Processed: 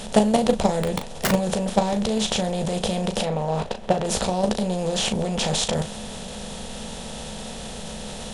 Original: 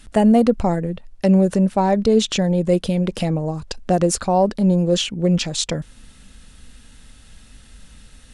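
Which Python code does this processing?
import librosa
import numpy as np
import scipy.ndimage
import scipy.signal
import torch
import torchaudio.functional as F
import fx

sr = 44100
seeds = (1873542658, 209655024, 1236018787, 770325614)

y = fx.bin_compress(x, sr, power=0.4)
y = fx.peak_eq(y, sr, hz=300.0, db=-10.5, octaves=0.44)
y = fx.level_steps(y, sr, step_db=11)
y = fx.overflow_wrap(y, sr, gain_db=12.5, at=(0.83, 1.31))
y = fx.bass_treble(y, sr, bass_db=-4, treble_db=-13, at=(3.22, 4.05))
y = fx.room_early_taps(y, sr, ms=(14, 38), db=(-10.0, -9.0))
y = y * librosa.db_to_amplitude(-2.0)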